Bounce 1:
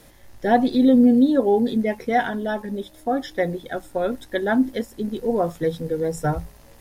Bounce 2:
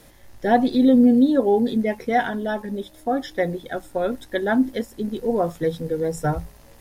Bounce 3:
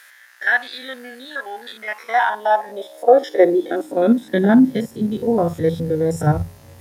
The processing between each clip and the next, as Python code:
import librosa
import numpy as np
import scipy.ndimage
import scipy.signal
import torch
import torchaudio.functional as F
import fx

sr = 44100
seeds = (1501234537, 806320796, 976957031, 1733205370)

y1 = x
y2 = fx.spec_steps(y1, sr, hold_ms=50)
y2 = fx.filter_sweep_highpass(y2, sr, from_hz=1600.0, to_hz=97.0, start_s=1.62, end_s=5.24, q=5.0)
y2 = y2 * 10.0 ** (4.5 / 20.0)